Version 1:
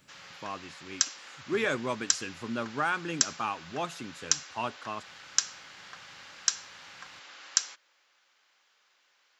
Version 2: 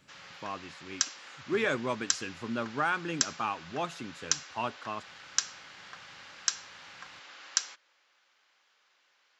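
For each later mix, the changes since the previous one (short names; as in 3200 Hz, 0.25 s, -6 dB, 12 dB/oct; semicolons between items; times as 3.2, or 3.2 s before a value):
master: add high shelf 9500 Hz -11 dB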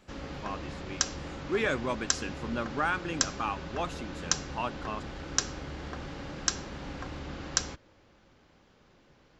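background: remove HPF 1400 Hz 12 dB/oct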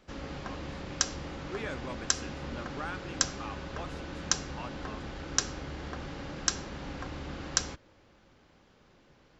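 speech -10.0 dB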